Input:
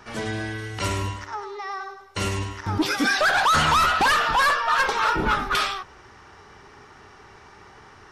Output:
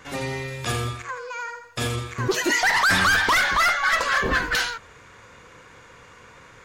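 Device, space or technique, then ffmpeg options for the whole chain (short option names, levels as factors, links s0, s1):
nightcore: -af "asetrate=53802,aresample=44100"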